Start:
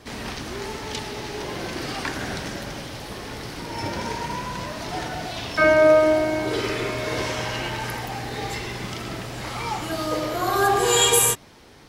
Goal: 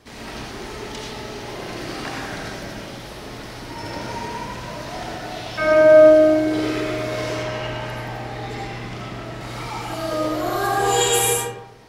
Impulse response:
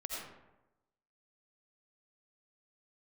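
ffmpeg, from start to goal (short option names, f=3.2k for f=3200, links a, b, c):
-filter_complex "[0:a]asettb=1/sr,asplit=3[a][b][c];[a]atrim=end=7.344[d];[b]atrim=start=7.34:end=9.41,asetpts=PTS-STARTPTS,afade=t=in:d=0.004:c=qsin,afade=t=out:st=2.066:d=0.004:c=qsin,aemphasis=mode=reproduction:type=cd[e];[c]atrim=start=9.406[f];[d][e]acrossfade=d=0.004:c1=hsin:c2=qsin[g];[g][f]acrossfade=d=0.004:c1=qsin:c2=hsin[h];[1:a]atrim=start_sample=2205[i];[h][i]afir=irnorm=-1:irlink=0,volume=-1dB"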